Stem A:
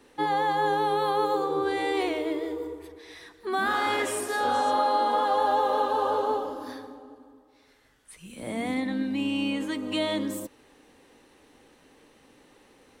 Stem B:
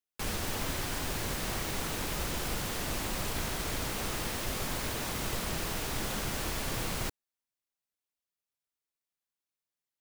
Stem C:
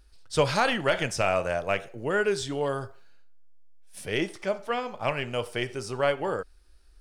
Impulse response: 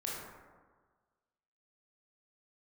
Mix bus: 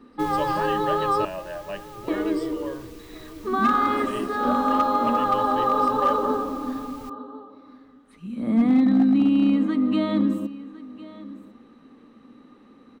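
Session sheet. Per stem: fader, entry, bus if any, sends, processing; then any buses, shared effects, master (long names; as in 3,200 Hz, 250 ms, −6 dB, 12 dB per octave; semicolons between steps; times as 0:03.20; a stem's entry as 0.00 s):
−1.5 dB, 0.00 s, muted 0:01.25–0:02.08, no send, echo send −18 dB, high-shelf EQ 3,900 Hz −11 dB; hollow resonant body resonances 230/1,200/3,900 Hz, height 18 dB, ringing for 50 ms
−2.5 dB, 0.00 s, no send, no echo send, parametric band 870 Hz −8.5 dB 2.9 octaves; automatic ducking −8 dB, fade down 1.30 s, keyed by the third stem
−11.5 dB, 0.00 s, no send, no echo send, EQ curve with evenly spaced ripples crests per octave 1.3, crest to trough 16 dB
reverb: not used
echo: single-tap delay 1,054 ms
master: parametric band 9,600 Hz −6 dB 1.7 octaves; gain into a clipping stage and back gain 13 dB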